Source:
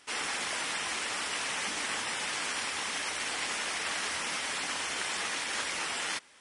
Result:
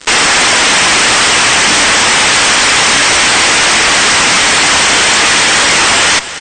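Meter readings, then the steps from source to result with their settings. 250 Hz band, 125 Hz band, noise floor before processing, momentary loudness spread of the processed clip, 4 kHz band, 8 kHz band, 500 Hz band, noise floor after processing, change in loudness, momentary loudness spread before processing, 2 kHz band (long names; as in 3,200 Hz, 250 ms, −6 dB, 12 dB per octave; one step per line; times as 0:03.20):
+26.5 dB, +29.5 dB, −37 dBFS, 0 LU, +26.0 dB, +26.0 dB, +26.0 dB, −9 dBFS, +26.0 dB, 1 LU, +25.5 dB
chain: fuzz pedal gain 53 dB, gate −53 dBFS
single-tap delay 280 ms −14 dB
level +6 dB
MP2 96 kbit/s 32,000 Hz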